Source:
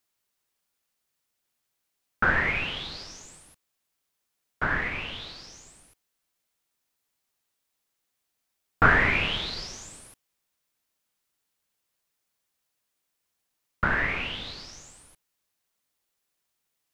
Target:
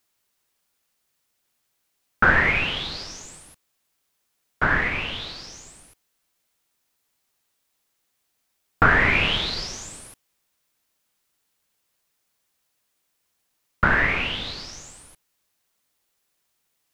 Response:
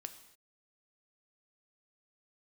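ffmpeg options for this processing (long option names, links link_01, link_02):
-af "alimiter=limit=-11dB:level=0:latency=1:release=454,volume=6dB"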